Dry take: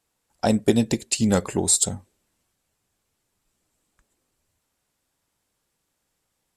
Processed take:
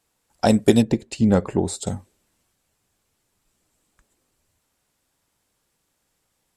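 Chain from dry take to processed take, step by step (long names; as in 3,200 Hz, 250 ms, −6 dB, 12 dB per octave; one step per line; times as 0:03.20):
0:00.82–0:01.87: low-pass filter 1,000 Hz 6 dB per octave
level +3.5 dB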